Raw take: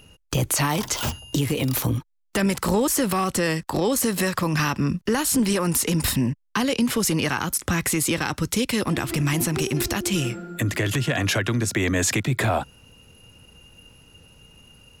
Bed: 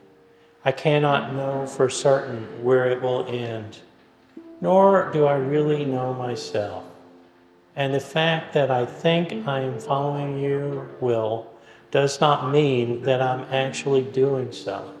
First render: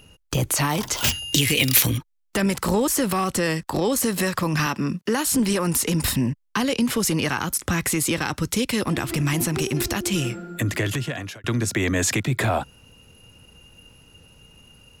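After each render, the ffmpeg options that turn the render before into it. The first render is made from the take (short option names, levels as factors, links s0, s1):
-filter_complex "[0:a]asettb=1/sr,asplit=3[s0][s1][s2];[s0]atrim=end=1.044[s3];[s1]atrim=start=1.04:end=1.98,asetpts=PTS-STARTPTS,afade=t=in:d=0.004:c=qsin,afade=t=out:st=0.936:d=0.004:c=qsin,highshelf=f=1500:t=q:w=1.5:g=10[s4];[s2]atrim=start=1.976[s5];[s3][s4]acrossfade=d=0.004:c1=hsin:c2=qsin[s6];[s6][s5]acrossfade=d=0.004:c1=qsin:c2=hsin,asettb=1/sr,asplit=3[s7][s8][s9];[s7]atrim=end=4.664[s10];[s8]atrim=start=4.66:end=5.27,asetpts=PTS-STARTPTS,afade=t=in:d=0.004:c=qsin,afade=t=out:st=0.606:d=0.004:c=qsin,highpass=160[s11];[s9]atrim=start=5.266[s12];[s10][s11]acrossfade=d=0.004:c1=hsin:c2=qsin[s13];[s13][s12]acrossfade=d=0.004:c1=qsin:c2=hsin,asplit=2[s14][s15];[s14]atrim=end=11.44,asetpts=PTS-STARTPTS,afade=t=out:st=10.82:d=0.62[s16];[s15]atrim=start=11.44,asetpts=PTS-STARTPTS,afade=t=in:d=0.004:c=hsin[s17];[s16][s17]concat=n=2:v=0:a=1"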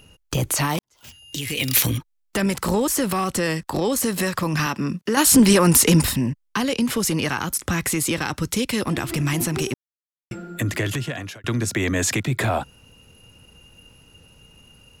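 -filter_complex "[0:a]asplit=6[s0][s1][s2][s3][s4][s5];[s0]atrim=end=0.79,asetpts=PTS-STARTPTS,afade=t=out:st=0.786:d=0.004:c=hsin[s6];[s1]atrim=start=0.79:end=5.172,asetpts=PTS-STARTPTS,afade=t=in:d=1.06:c=qua[s7];[s2]atrim=start=5.168:end=6.042,asetpts=PTS-STARTPTS,volume=2.37[s8];[s3]atrim=start=6.038:end=9.74,asetpts=PTS-STARTPTS,afade=t=out:st=3.698:d=0.004:c=hsin[s9];[s4]atrim=start=9.74:end=10.31,asetpts=PTS-STARTPTS,volume=0[s10];[s5]atrim=start=10.31,asetpts=PTS-STARTPTS,afade=t=in:d=0.004:c=hsin[s11];[s6][s7]concat=n=2:v=0:a=1[s12];[s12][s8]acrossfade=d=0.004:c1=hsin:c2=hsin[s13];[s9][s10][s11]concat=n=3:v=0:a=1[s14];[s13][s14]acrossfade=d=0.004:c1=hsin:c2=hsin"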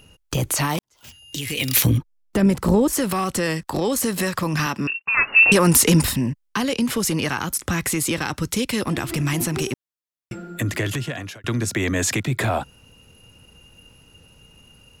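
-filter_complex "[0:a]asettb=1/sr,asplit=3[s0][s1][s2];[s0]atrim=end=1.844[s3];[s1]atrim=start=1.84:end=2.93,asetpts=PTS-STARTPTS,afade=t=in:d=0.004:c=qsin,afade=t=out:st=1.086:d=0.004:c=qsin,tiltshelf=f=800:g=6.5[s4];[s2]atrim=start=2.926[s5];[s3][s4]acrossfade=d=0.004:c1=hsin:c2=qsin[s6];[s6][s5]acrossfade=d=0.004:c1=qsin:c2=hsin,asettb=1/sr,asplit=3[s7][s8][s9];[s7]atrim=end=4.874[s10];[s8]atrim=start=4.87:end=5.52,asetpts=PTS-STARTPTS,afade=t=in:d=0.004:c=qsin,afade=t=out:st=0.646:d=0.004:c=qsin,lowpass=f=2500:t=q:w=0.5098,lowpass=f=2500:t=q:w=0.6013,lowpass=f=2500:t=q:w=0.9,lowpass=f=2500:t=q:w=2.563,afreqshift=-2900[s11];[s9]atrim=start=5.516[s12];[s10][s11]acrossfade=d=0.004:c1=hsin:c2=qsin[s13];[s13][s12]acrossfade=d=0.004:c1=qsin:c2=hsin"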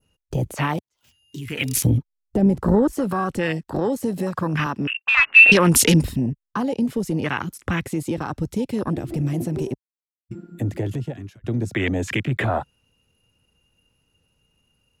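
-af "afwtdn=0.0562,adynamicequalizer=threshold=0.0224:dfrequency=3100:dqfactor=0.95:tfrequency=3100:tqfactor=0.95:attack=5:release=100:ratio=0.375:range=2:mode=boostabove:tftype=bell"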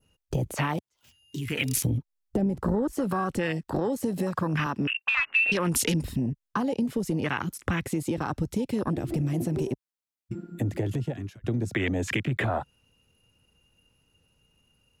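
-af "acompressor=threshold=0.0631:ratio=4"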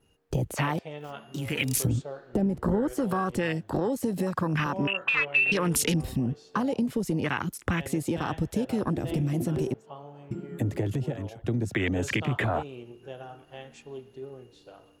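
-filter_complex "[1:a]volume=0.0891[s0];[0:a][s0]amix=inputs=2:normalize=0"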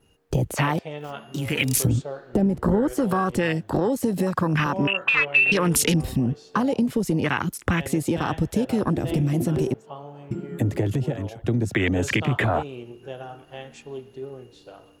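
-af "volume=1.78"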